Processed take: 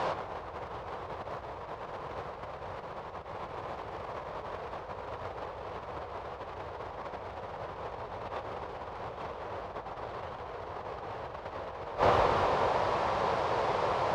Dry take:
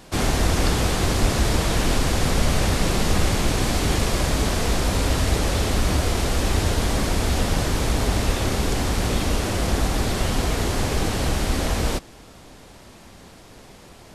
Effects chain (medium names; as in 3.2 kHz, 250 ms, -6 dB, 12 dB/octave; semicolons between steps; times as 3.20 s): tracing distortion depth 0.25 ms; graphic EQ 250/500/1000/8000 Hz -12/+9/+12/-7 dB; peak limiter -15 dBFS, peak gain reduction 10 dB; distance through air 120 m; echo whose repeats swap between lows and highs 117 ms, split 940 Hz, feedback 77%, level -10 dB; compressor with a negative ratio -32 dBFS, ratio -0.5; high-pass 94 Hz 12 dB/octave